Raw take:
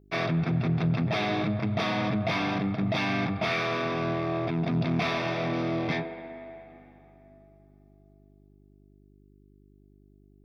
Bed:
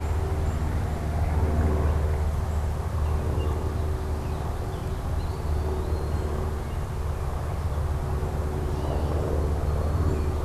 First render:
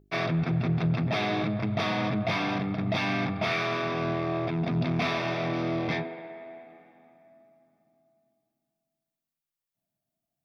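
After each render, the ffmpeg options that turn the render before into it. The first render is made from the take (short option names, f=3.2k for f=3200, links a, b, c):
-af "bandreject=f=50:t=h:w=4,bandreject=f=100:t=h:w=4,bandreject=f=150:t=h:w=4,bandreject=f=200:t=h:w=4,bandreject=f=250:t=h:w=4,bandreject=f=300:t=h:w=4,bandreject=f=350:t=h:w=4,bandreject=f=400:t=h:w=4,bandreject=f=450:t=h:w=4,bandreject=f=500:t=h:w=4"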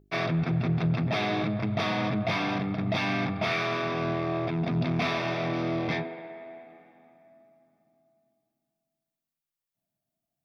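-af anull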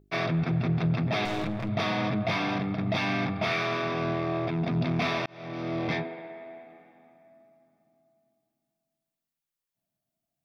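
-filter_complex "[0:a]asettb=1/sr,asplit=3[a][b][c];[a]atrim=end=1.254[d];[b]atrim=start=1.25:end=1.69,asetpts=PTS-STARTPTS,afade=t=in:d=0.004:c=qsin,afade=t=out:st=0.436:d=0.004:c=qsin,aeval=exprs='clip(val(0),-1,0.0178)':c=same[e];[c]atrim=start=1.686[f];[d][e]acrossfade=d=0.004:c1=hsin:c2=qsin[g];[g][f]acrossfade=d=0.004:c1=qsin:c2=hsin,asplit=2[h][i];[h]atrim=end=5.26,asetpts=PTS-STARTPTS,afade=t=out:st=5.256:d=0.004:c=hsin[j];[i]atrim=start=5.26,asetpts=PTS-STARTPTS,afade=t=in:d=0.6[k];[j][k]concat=n=2:v=0:a=1"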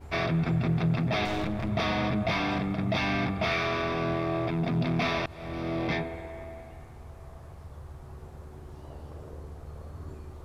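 -filter_complex "[1:a]volume=-17dB[a];[0:a][a]amix=inputs=2:normalize=0"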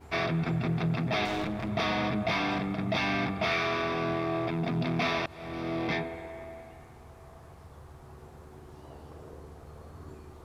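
-af "lowshelf=f=94:g=-11.5,bandreject=f=570:w=12"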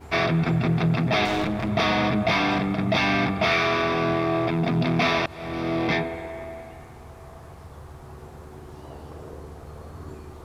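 -af "volume=7dB"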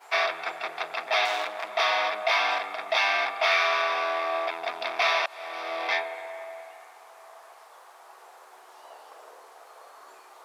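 -af "highpass=f=640:w=0.5412,highpass=f=640:w=1.3066"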